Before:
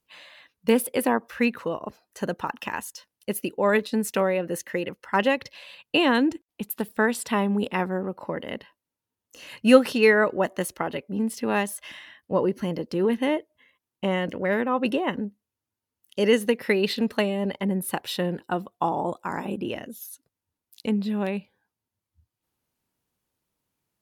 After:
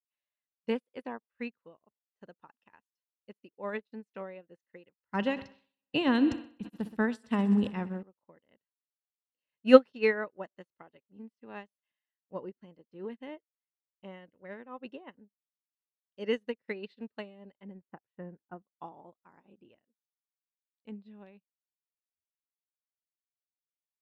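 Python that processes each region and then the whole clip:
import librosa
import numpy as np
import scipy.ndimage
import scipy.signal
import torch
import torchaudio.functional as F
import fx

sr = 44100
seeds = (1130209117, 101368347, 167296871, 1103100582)

y = fx.chain(x, sr, fx.bass_treble(bass_db=13, treble_db=8),
    fx.echo_heads(ms=63, heads='first and second', feedback_pct=69, wet_db=-20.5),
    fx.sustainer(db_per_s=55.0), at=(5.0, 8.03))
y = fx.chain(y, sr, fx.lowpass(hz=1900.0, slope=24),
    fx.low_shelf(hz=150.0, db=9.0), at=(17.81, 18.62))
y = scipy.signal.sosfilt(scipy.signal.butter(2, 4300.0, 'lowpass', fs=sr, output='sos'), y)
y = fx.upward_expand(y, sr, threshold_db=-42.0, expansion=2.5)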